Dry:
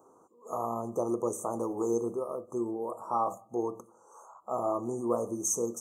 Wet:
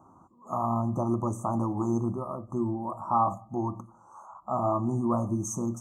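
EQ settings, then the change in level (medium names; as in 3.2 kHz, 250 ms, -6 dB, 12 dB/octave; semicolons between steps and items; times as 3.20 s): RIAA curve playback; hum notches 60/120 Hz; static phaser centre 1.1 kHz, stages 4; +6.0 dB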